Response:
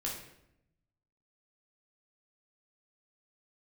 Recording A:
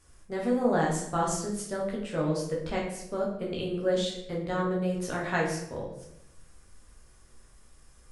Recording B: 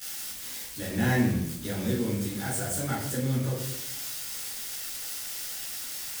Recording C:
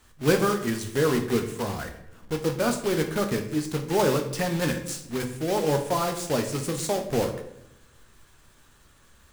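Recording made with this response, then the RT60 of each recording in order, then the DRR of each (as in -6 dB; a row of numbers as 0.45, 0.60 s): A; 0.80, 0.80, 0.80 s; -3.5, -13.5, 4.5 dB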